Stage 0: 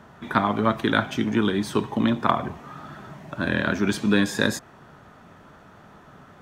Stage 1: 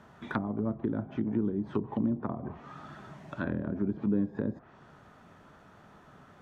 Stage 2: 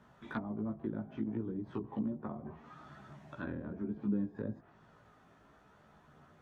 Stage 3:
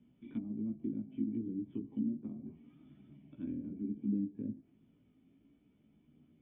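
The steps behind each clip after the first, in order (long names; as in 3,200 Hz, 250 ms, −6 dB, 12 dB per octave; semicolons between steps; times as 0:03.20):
treble cut that deepens with the level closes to 410 Hz, closed at −19 dBFS; level −6.5 dB
multi-voice chorus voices 2, 0.32 Hz, delay 16 ms, depth 3.1 ms; level −4 dB
formant resonators in series i; level +5.5 dB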